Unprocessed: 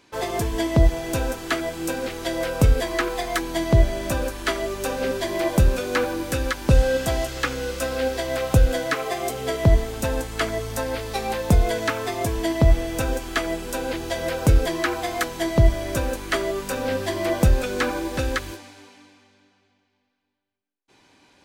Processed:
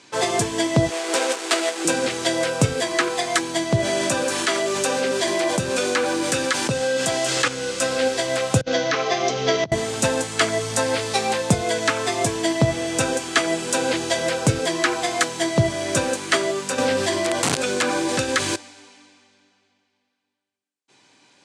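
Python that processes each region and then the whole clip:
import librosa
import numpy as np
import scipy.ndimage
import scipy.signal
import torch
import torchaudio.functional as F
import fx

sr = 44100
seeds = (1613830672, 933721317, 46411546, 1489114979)

y = fx.chain(x, sr, fx.dead_time(dead_ms=0.23),
    fx.highpass(hz=330.0, slope=24), at=(0.9, 1.85))
y = fx.chain(y, sr, fx.highpass(hz=150.0, slope=6),
    fx.env_flatten(amount_pct=70), at=(3.79, 7.48))
y = fx.chain(y, sr, fx.cheby1_lowpass(hz=6200.0, order=5),
    fx.over_compress(threshold_db=-23.0, ratio=-0.5), at=(8.61, 9.72))
y = fx.chain(y, sr, fx.overflow_wrap(gain_db=13.0),
    fx.env_flatten(amount_pct=70), at=(16.78, 18.56))
y = scipy.signal.sosfilt(scipy.signal.ellip(3, 1.0, 60, [120.0, 8600.0], 'bandpass', fs=sr, output='sos'), y)
y = fx.high_shelf(y, sr, hz=3400.0, db=9.0)
y = fx.rider(y, sr, range_db=10, speed_s=0.5)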